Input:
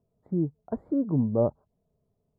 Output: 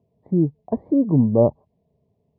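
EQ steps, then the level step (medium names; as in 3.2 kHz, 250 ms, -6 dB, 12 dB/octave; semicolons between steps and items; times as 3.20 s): high-pass 70 Hz; Butterworth band-stop 1.4 kHz, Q 2; distance through air 210 m; +8.5 dB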